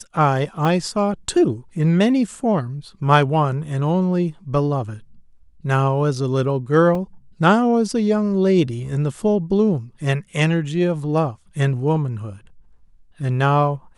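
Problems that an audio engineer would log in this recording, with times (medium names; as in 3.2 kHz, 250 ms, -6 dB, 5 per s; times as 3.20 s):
0.65 s: dropout 2.6 ms
6.95 s: dropout 2.5 ms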